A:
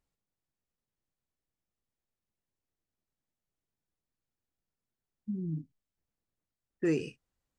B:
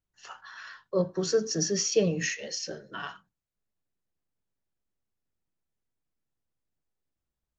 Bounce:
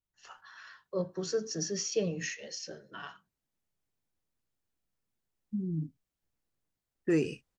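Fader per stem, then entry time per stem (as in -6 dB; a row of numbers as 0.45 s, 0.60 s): +1.5 dB, -6.5 dB; 0.25 s, 0.00 s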